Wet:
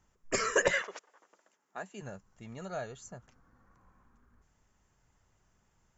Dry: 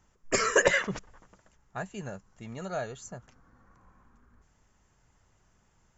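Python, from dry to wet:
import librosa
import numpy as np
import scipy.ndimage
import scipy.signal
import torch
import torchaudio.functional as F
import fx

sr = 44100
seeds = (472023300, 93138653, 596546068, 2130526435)

y = fx.highpass(x, sr, hz=fx.line((0.81, 460.0), (2.0, 190.0)), slope=24, at=(0.81, 2.0), fade=0.02)
y = y * 10.0 ** (-4.5 / 20.0)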